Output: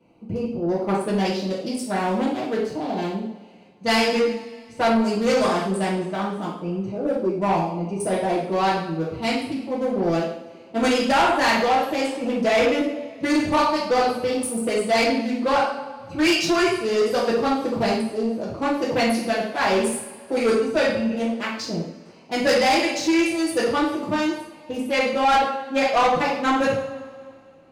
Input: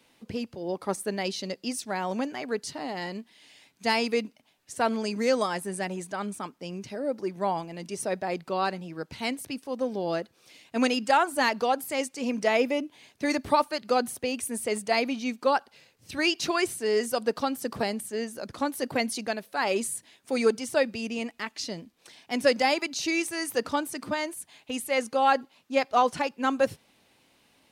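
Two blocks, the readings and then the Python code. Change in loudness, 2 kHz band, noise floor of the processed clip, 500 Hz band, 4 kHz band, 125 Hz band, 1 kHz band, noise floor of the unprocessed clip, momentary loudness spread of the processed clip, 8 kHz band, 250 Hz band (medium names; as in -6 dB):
+6.5 dB, +5.5 dB, -46 dBFS, +6.0 dB, +5.5 dB, +11.0 dB, +6.0 dB, -65 dBFS, 10 LU, +2.0 dB, +8.5 dB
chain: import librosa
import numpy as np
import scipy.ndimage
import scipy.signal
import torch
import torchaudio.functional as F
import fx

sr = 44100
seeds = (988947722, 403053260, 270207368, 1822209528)

y = fx.wiener(x, sr, points=25)
y = fx.rev_double_slope(y, sr, seeds[0], early_s=0.59, late_s=2.3, knee_db=-21, drr_db=-8.0)
y = 10.0 ** (-16.5 / 20.0) * np.tanh(y / 10.0 ** (-16.5 / 20.0))
y = y * 10.0 ** (2.5 / 20.0)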